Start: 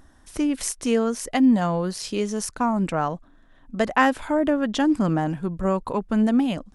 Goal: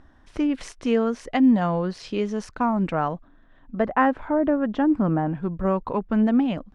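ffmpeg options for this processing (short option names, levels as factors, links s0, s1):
-af "asetnsamples=n=441:p=0,asendcmd='3.78 lowpass f 1500;5.35 lowpass f 2700',lowpass=3200"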